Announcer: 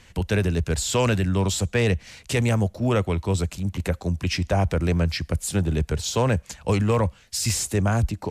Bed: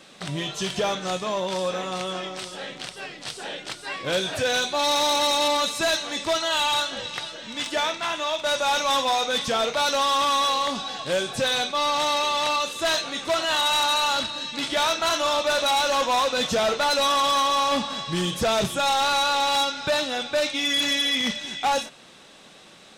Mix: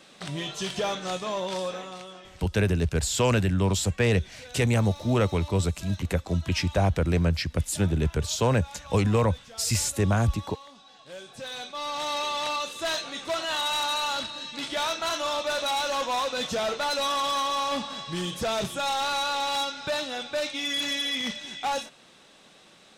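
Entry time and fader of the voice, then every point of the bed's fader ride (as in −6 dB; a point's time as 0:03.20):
2.25 s, −1.5 dB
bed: 0:01.59 −3.5 dB
0:02.57 −23 dB
0:10.71 −23 dB
0:12.19 −5.5 dB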